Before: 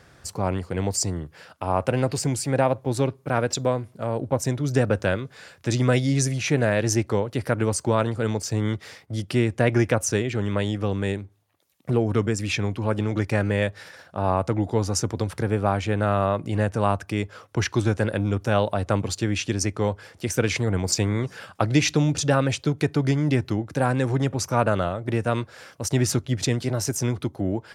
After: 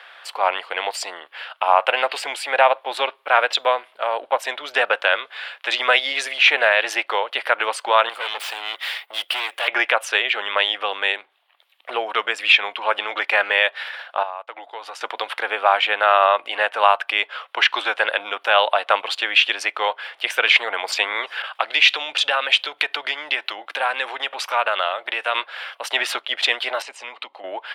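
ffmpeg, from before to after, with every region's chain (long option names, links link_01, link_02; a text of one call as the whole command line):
ffmpeg -i in.wav -filter_complex "[0:a]asettb=1/sr,asplit=3[link_01][link_02][link_03];[link_01]atrim=end=8.094[link_04];[link_02]atrim=start=8.09:end=9.68,asetpts=PTS-STARTPTS,afade=type=in:duration=0.004:curve=qsin,afade=type=out:start_time=1.586:duration=0.004:curve=qsin,aemphasis=mode=production:type=bsi,acontrast=42,aeval=exprs='(tanh(31.6*val(0)+0.8)-tanh(0.8))/31.6':channel_layout=same[link_05];[link_03]atrim=start=9.676[link_06];[link_04][link_05]acrossfade=duration=0.004:curve1=hsin:curve2=qsin[link_07];[link_07][link_06]acrossfade=duration=0.004:curve1=qsin:curve2=hsin,asettb=1/sr,asplit=3[link_08][link_09][link_10];[link_08]atrim=end=14.234[link_11];[link_09]atrim=start=14.23:end=15.01,asetpts=PTS-STARTPTS,afade=type=in:duration=0.004:curve=qsin,afade=type=out:start_time=0.776:duration=0.004:curve=qsin,equalizer=frequency=140:width_type=o:width=1.1:gain=-12,acompressor=threshold=-29dB:ratio=10:attack=3.2:release=140:knee=1:detection=peak,agate=range=-33dB:threshold=-32dB:ratio=3:release=100:detection=peak[link_12];[link_10]atrim=start=15.006[link_13];[link_11][link_12]acrossfade=duration=0.004:curve1=hsin:curve2=qsin[link_14];[link_14][link_13]acrossfade=duration=0.004:curve1=qsin:curve2=hsin,asettb=1/sr,asplit=3[link_15][link_16][link_17];[link_15]atrim=end=21.424[link_18];[link_16]atrim=start=21.42:end=25.35,asetpts=PTS-STARTPTS,afade=type=in:duration=0.004:curve=qsin,afade=type=out:start_time=3.926:duration=0.004:curve=qsin,acompressor=threshold=-27dB:ratio=2:attack=3.2:release=140:knee=1:detection=peak,adynamicequalizer=threshold=0.00631:dfrequency=2100:dqfactor=0.7:tfrequency=2100:tqfactor=0.7:attack=5:release=100:ratio=0.375:range=2:mode=boostabove:tftype=highshelf[link_19];[link_17]atrim=start=25.346[link_20];[link_18][link_19]acrossfade=duration=0.004:curve1=hsin:curve2=qsin[link_21];[link_21][link_20]acrossfade=duration=0.004:curve1=qsin:curve2=hsin,asettb=1/sr,asplit=3[link_22][link_23][link_24];[link_22]atrim=end=26.824[link_25];[link_23]atrim=start=26.82:end=27.44,asetpts=PTS-STARTPTS,afade=type=in:duration=0.004:curve=qsin,afade=type=out:start_time=0.616:duration=0.004:curve=qsin,acompressor=threshold=-29dB:ratio=3:attack=3.2:release=140:knee=1:detection=peak,highpass=120,equalizer=frequency=120:width_type=q:width=4:gain=-7,equalizer=frequency=220:width_type=q:width=4:gain=4,equalizer=frequency=360:width_type=q:width=4:gain=-7,equalizer=frequency=690:width_type=q:width=4:gain=-4,equalizer=frequency=1500:width_type=q:width=4:gain=-10,equalizer=frequency=5700:width_type=q:width=4:gain=-5,lowpass=frequency=7900:width=0.5412,lowpass=frequency=7900:width=1.3066,bandreject=frequency=3400:width=8.2[link_26];[link_24]atrim=start=27.436[link_27];[link_25][link_26]acrossfade=duration=0.004:curve1=hsin:curve2=qsin[link_28];[link_28][link_27]acrossfade=duration=0.004:curve1=qsin:curve2=hsin,highpass=frequency=700:width=0.5412,highpass=frequency=700:width=1.3066,highshelf=frequency=4500:width_type=q:width=3:gain=-12.5,alimiter=level_in=12dB:limit=-1dB:release=50:level=0:latency=1,volume=-1dB" out.wav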